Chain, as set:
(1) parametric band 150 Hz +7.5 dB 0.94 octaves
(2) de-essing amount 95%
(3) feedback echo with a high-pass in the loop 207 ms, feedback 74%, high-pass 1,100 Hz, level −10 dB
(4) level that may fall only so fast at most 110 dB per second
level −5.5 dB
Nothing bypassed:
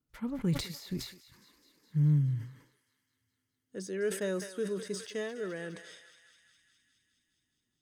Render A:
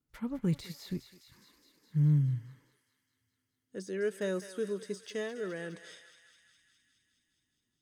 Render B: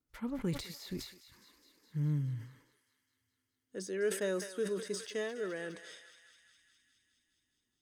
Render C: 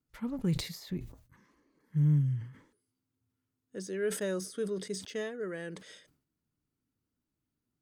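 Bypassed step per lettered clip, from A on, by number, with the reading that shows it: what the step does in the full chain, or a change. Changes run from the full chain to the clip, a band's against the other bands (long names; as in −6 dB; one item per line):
4, change in crest factor −2.5 dB
1, 125 Hz band −6.5 dB
3, change in momentary loudness spread +1 LU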